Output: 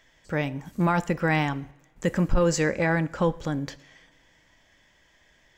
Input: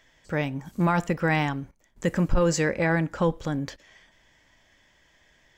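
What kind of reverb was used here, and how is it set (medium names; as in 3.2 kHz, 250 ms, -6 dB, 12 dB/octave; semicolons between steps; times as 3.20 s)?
two-slope reverb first 0.81 s, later 3.3 s, from -22 dB, DRR 18 dB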